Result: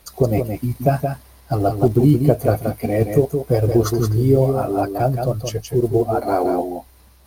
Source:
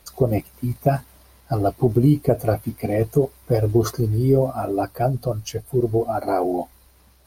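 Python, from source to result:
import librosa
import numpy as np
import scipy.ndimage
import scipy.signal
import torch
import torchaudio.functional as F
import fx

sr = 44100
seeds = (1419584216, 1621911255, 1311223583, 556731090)

y = fx.block_float(x, sr, bits=7)
y = y + 10.0 ** (-6.0 / 20.0) * np.pad(y, (int(172 * sr / 1000.0), 0))[:len(y)]
y = F.gain(torch.from_numpy(y), 2.0).numpy()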